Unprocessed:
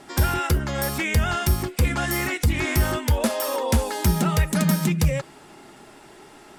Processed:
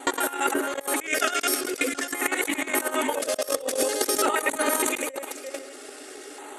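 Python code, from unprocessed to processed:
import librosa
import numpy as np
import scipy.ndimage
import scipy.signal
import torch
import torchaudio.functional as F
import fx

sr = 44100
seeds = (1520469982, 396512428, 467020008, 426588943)

y = fx.local_reverse(x, sr, ms=67.0)
y = scipy.signal.sosfilt(scipy.signal.butter(4, 11000.0, 'lowpass', fs=sr, output='sos'), y)
y = fx.high_shelf(y, sr, hz=4100.0, db=6.5)
y = fx.notch_comb(y, sr, f0_hz=340.0)
y = y + 10.0 ** (-21.0 / 20.0) * np.pad(y, (int(499 * sr / 1000.0), 0))[:len(y)]
y = fx.level_steps(y, sr, step_db=13)
y = fx.brickwall_highpass(y, sr, low_hz=260.0)
y = fx.peak_eq(y, sr, hz=3100.0, db=-5.0, octaves=1.8)
y = y + 10.0 ** (-19.0 / 20.0) * np.pad(y, (int(347 * sr / 1000.0), 0))[:len(y)]
y = fx.transient(y, sr, attack_db=9, sustain_db=5)
y = fx.filter_lfo_notch(y, sr, shape='square', hz=0.47, low_hz=920.0, high_hz=5200.0, q=1.6)
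y = fx.over_compress(y, sr, threshold_db=-34.0, ratio=-0.5)
y = y * librosa.db_to_amplitude(8.5)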